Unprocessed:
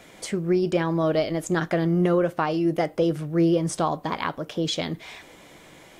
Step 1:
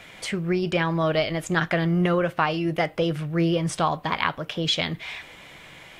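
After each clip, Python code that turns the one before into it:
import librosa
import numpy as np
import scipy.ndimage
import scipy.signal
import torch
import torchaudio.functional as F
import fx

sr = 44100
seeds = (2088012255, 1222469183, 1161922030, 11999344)

y = fx.curve_eq(x, sr, hz=(130.0, 310.0, 2700.0, 6300.0), db=(0, -8, 5, -5))
y = F.gain(torch.from_numpy(y), 3.5).numpy()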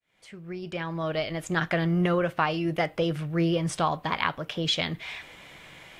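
y = fx.fade_in_head(x, sr, length_s=1.77)
y = F.gain(torch.from_numpy(y), -2.5).numpy()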